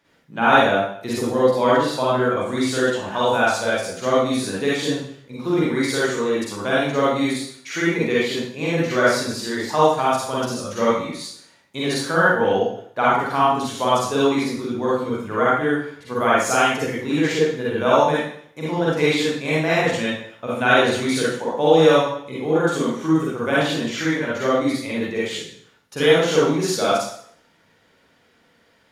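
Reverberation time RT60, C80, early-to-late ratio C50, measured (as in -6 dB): 0.60 s, 2.5 dB, -4.0 dB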